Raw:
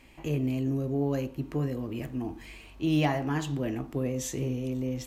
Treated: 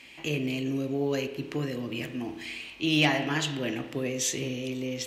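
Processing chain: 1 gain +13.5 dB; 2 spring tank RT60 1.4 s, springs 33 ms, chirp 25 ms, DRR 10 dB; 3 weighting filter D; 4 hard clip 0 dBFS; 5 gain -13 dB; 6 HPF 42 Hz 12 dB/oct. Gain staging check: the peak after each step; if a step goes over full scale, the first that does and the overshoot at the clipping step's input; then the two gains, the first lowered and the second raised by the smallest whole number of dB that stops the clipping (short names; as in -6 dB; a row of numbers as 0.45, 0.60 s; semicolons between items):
+0.5, +2.0, +4.0, 0.0, -13.0, -12.0 dBFS; step 1, 4.0 dB; step 1 +9.5 dB, step 5 -9 dB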